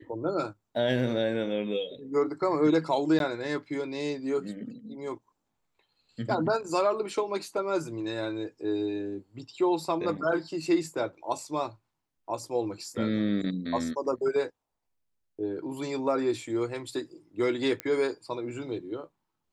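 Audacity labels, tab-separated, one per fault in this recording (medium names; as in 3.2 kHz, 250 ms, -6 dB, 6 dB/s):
3.190000	3.200000	dropout
17.800000	17.800000	pop -16 dBFS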